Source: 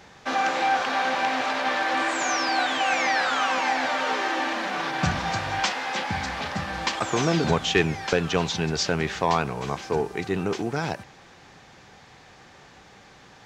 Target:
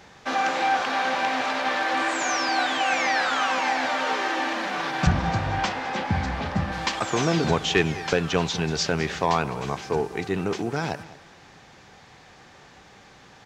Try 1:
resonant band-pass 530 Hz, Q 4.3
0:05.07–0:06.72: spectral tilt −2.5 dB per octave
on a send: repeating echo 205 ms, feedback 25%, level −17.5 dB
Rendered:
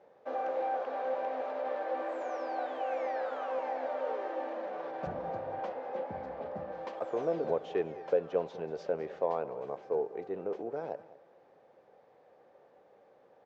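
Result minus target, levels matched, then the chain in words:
500 Hz band +7.5 dB
0:05.07–0:06.72: spectral tilt −2.5 dB per octave
on a send: repeating echo 205 ms, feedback 25%, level −17.5 dB

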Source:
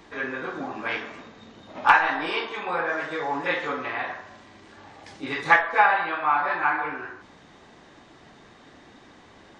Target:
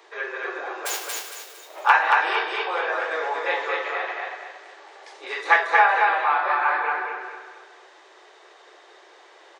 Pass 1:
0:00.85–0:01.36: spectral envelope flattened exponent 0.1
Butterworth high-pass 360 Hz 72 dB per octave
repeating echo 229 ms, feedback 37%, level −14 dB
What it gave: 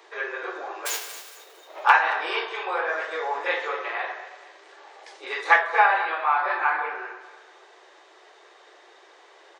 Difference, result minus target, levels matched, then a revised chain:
echo-to-direct −11.5 dB
0:00.85–0:01.36: spectral envelope flattened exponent 0.1
Butterworth high-pass 360 Hz 72 dB per octave
repeating echo 229 ms, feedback 37%, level −2.5 dB

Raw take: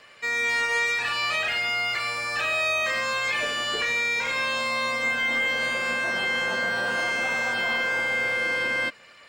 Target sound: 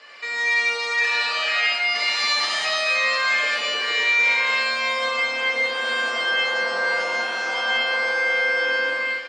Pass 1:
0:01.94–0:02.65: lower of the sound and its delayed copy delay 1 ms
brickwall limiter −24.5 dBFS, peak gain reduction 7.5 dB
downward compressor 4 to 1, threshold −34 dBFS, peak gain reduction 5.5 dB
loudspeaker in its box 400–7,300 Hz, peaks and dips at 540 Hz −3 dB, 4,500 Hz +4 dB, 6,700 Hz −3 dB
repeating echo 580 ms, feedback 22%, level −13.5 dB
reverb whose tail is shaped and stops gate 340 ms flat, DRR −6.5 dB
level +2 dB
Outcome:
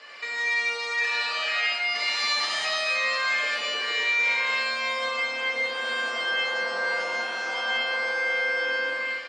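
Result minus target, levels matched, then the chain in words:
downward compressor: peak gain reduction +5.5 dB
0:01.94–0:02.65: lower of the sound and its delayed copy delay 1 ms
brickwall limiter −24.5 dBFS, peak gain reduction 7.5 dB
loudspeaker in its box 400–7,300 Hz, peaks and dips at 540 Hz −3 dB, 4,500 Hz +4 dB, 6,700 Hz −3 dB
repeating echo 580 ms, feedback 22%, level −13.5 dB
reverb whose tail is shaped and stops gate 340 ms flat, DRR −6.5 dB
level +2 dB

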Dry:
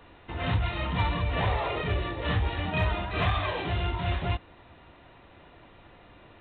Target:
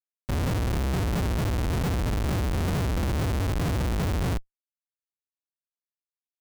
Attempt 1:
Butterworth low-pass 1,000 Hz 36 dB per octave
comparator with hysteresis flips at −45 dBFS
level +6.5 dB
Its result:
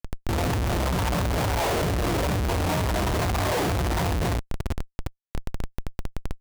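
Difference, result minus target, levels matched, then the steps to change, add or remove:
1,000 Hz band +6.0 dB
change: Butterworth low-pass 270 Hz 36 dB per octave

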